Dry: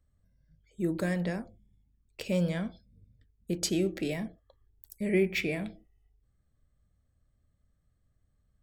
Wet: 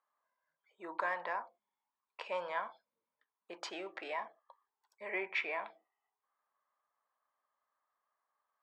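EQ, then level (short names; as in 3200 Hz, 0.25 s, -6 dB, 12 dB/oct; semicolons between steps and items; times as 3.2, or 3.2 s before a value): ladder high-pass 920 Hz, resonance 75%; Bessel low-pass 2800 Hz, order 2; tilt -3 dB/oct; +13.5 dB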